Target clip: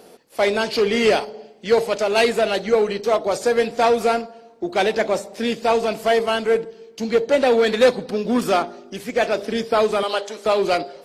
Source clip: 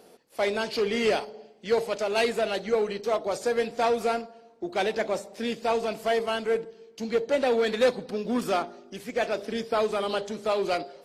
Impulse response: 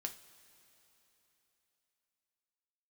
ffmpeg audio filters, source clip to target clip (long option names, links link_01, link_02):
-filter_complex "[0:a]asettb=1/sr,asplit=3[link_01][link_02][link_03];[link_01]atrim=end=10.034[link_04];[link_02]atrim=start=10.03:end=10.46,asetpts=PTS-STARTPTS,afade=type=in:duration=0.004:curve=qsin,afade=type=out:start_time=0.426:duration=0.004:curve=qsin,highpass=490[link_05];[link_03]atrim=start=10.456[link_06];[link_04][link_05]acrossfade=duration=0.004:curve1=hsin:curve2=qsin[link_07];[link_07][link_06]acrossfade=duration=0.004:curve1=qsin:curve2=hsin,volume=7.5dB"